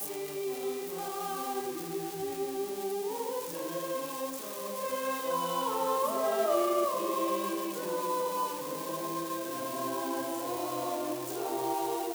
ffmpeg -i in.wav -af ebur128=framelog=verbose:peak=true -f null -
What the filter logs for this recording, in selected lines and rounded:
Integrated loudness:
  I:         -33.0 LUFS
  Threshold: -43.0 LUFS
Loudness range:
  LRA:         5.0 LU
  Threshold: -52.7 LUFS
  LRA low:   -35.3 LUFS
  LRA high:  -30.3 LUFS
True peak:
  Peak:      -16.2 dBFS